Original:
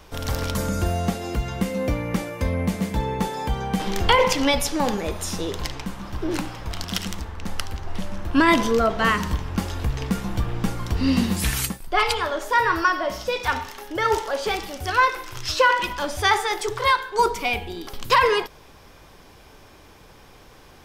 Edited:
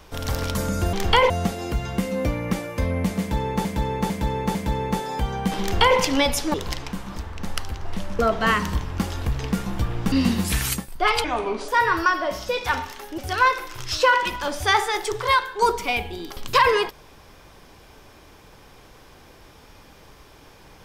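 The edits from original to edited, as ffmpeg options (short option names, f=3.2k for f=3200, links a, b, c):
-filter_complex "[0:a]asplit=13[a][b][c][d][e][f][g][h][i][j][k][l][m];[a]atrim=end=0.932[n];[b]atrim=start=3.888:end=4.262[o];[c]atrim=start=0.928:end=3.282[p];[d]atrim=start=2.828:end=3.282[q];[e]atrim=start=2.828:end=3.282[r];[f]atrim=start=2.828:end=4.822[s];[g]atrim=start=5.468:end=6.092[t];[h]atrim=start=7.178:end=8.212[u];[i]atrim=start=8.768:end=10.702[v];[j]atrim=start=11.038:end=12.164[w];[k]atrim=start=12.16:end=12.47,asetpts=PTS-STARTPTS,asetrate=30870,aresample=44100[x];[l]atrim=start=12.466:end=13.972[y];[m]atrim=start=14.748[z];[n][o]acrossfade=d=0.004:c1=hsin:c2=hsin[aa];[aa][p]acrossfade=d=0.004:c1=hsin:c2=hsin[ab];[ab][q]acrossfade=d=0.004:c1=hsin:c2=hsin[ac];[ac][r]acrossfade=d=0.004:c1=hsin:c2=hsin[ad];[ad][s]acrossfade=d=0.004:c1=hsin:c2=hsin[ae];[ae][t]acrossfade=d=0.004:c1=hsin:c2=hsin[af];[af][u]acrossfade=d=0.004:c1=hsin:c2=hsin[ag];[ag][v]acrossfade=d=0.004:c1=hsin:c2=hsin[ah];[ah][w]acrossfade=d=0.004:c1=hsin:c2=hsin[ai];[ai][x]acrossfade=d=0.004:c1=hsin:c2=hsin[aj];[aj][y]acrossfade=d=0.004:c1=hsin:c2=hsin[ak];[ak][z]acrossfade=d=0.004:c1=hsin:c2=hsin"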